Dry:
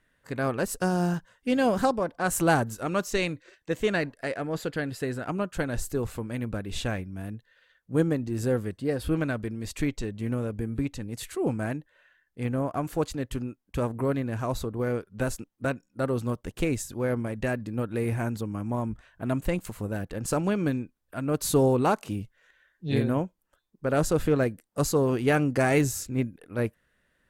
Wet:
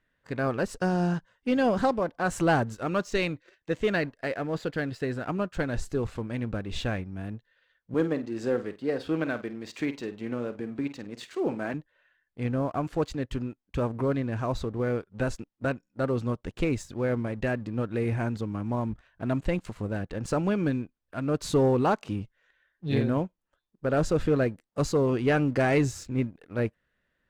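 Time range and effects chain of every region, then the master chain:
0:07.94–0:11.74: band-pass filter 240–7,900 Hz + flutter between parallel walls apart 8.5 metres, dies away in 0.25 s
whole clip: low-pass filter 5,200 Hz 12 dB per octave; leveller curve on the samples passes 1; level −3.5 dB

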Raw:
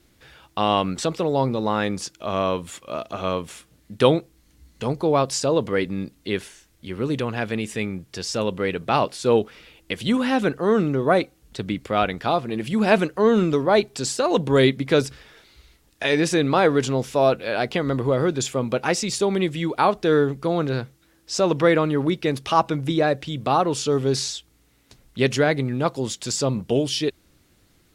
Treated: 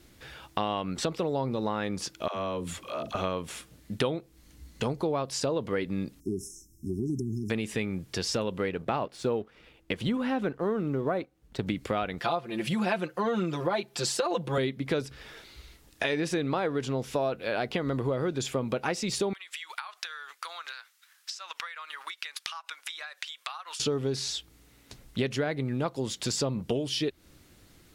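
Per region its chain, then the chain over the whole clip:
0:02.28–0:03.15: all-pass dispersion lows, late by 87 ms, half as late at 350 Hz + downward compressor 2 to 1, threshold −38 dBFS
0:06.20–0:07.50: downward compressor 3 to 1, threshold −26 dBFS + linear-phase brick-wall band-stop 420–5,100 Hz
0:08.69–0:11.67: mu-law and A-law mismatch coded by A + high-shelf EQ 3,000 Hz −10 dB
0:12.19–0:14.58: high-pass filter 200 Hz 6 dB per octave + parametric band 290 Hz −4.5 dB 0.88 octaves + comb filter 5.8 ms, depth 93%
0:19.33–0:23.80: high-pass filter 1,200 Hz 24 dB per octave + downward compressor 16 to 1, threshold −39 dBFS + transient designer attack +7 dB, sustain −3 dB
whole clip: dynamic equaliser 7,600 Hz, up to −5 dB, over −43 dBFS, Q 1; downward compressor 6 to 1, threshold −29 dBFS; level +2.5 dB

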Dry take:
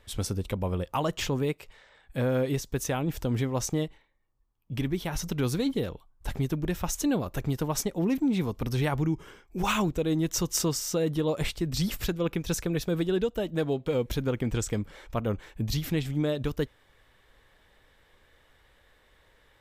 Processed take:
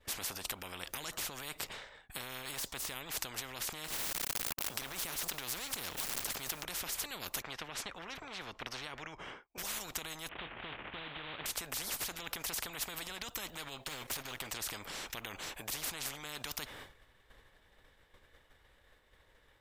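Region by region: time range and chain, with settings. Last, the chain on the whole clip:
0:02.42–0:02.92: de-essing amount 85% + linearly interpolated sample-rate reduction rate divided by 2×
0:03.84–0:06.64: mu-law and A-law mismatch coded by A + envelope flattener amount 100%
0:07.42–0:09.58: low-pass filter 1,200 Hz + spectral tilt +4.5 dB per octave
0:10.29–0:11.46: variable-slope delta modulation 16 kbit/s + high-pass filter 60 Hz + double-tracking delay 25 ms −13.5 dB
0:13.84–0:14.47: output level in coarse steps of 11 dB + comb filter 7.4 ms, depth 72% + leveller curve on the samples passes 1
whole clip: downward expander −48 dBFS; brickwall limiter −26.5 dBFS; every bin compressed towards the loudest bin 10 to 1; level +12 dB

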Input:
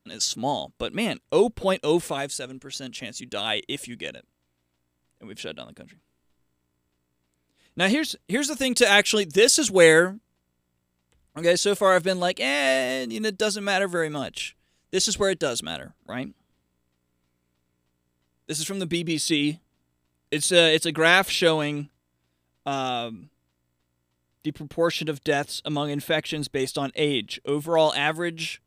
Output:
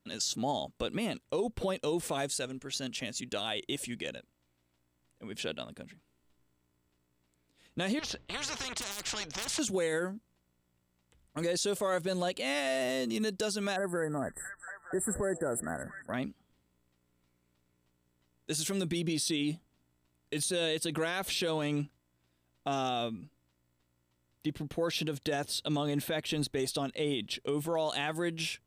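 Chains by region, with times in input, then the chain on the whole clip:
0:07.99–0:09.59: high-frequency loss of the air 210 metres + hard clipping −11 dBFS + every bin compressed towards the loudest bin 10 to 1
0:13.76–0:16.14: linear-phase brick-wall band-stop 2,000–7,400 Hz + echo through a band-pass that steps 229 ms, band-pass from 5,100 Hz, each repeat −0.7 octaves, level −6.5 dB
whole clip: dynamic equaliser 2,100 Hz, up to −4 dB, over −36 dBFS, Q 0.94; downward compressor, threshold −22 dBFS; brickwall limiter −21.5 dBFS; level −1.5 dB

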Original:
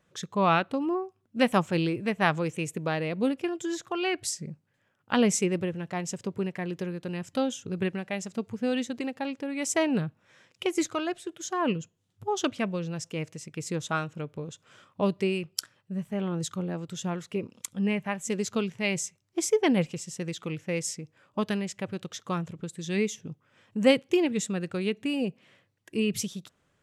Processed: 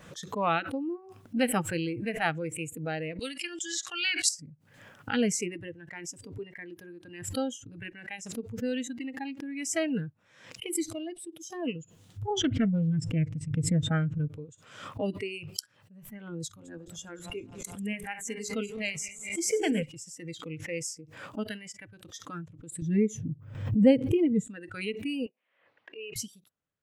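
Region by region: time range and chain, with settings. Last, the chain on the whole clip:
0:03.19–0:04.29: meter weighting curve ITU-R 468 + one half of a high-frequency compander encoder only
0:10.66–0:11.67: parametric band 1,500 Hz −13.5 dB 0.93 octaves + notch filter 6,900 Hz, Q 7
0:12.30–0:14.28: bass and treble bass +15 dB, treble −10 dB + highs frequency-modulated by the lows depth 0.37 ms
0:16.46–0:19.83: feedback delay that plays each chunk backwards 105 ms, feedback 74%, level −12 dB + mains-hum notches 60/120/180/240/300/360/420/480/540 Hz
0:22.82–0:24.47: noise gate with hold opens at −54 dBFS, closes at −59 dBFS + upward compression, threshold −28 dBFS + tilt shelving filter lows +9 dB, about 700 Hz
0:25.26–0:26.16: band-pass filter 590–2,900 Hz + high-frequency loss of the air 180 metres
whole clip: notch filter 370 Hz, Q 12; noise reduction from a noise print of the clip's start 17 dB; background raised ahead of every attack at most 75 dB per second; level −3.5 dB

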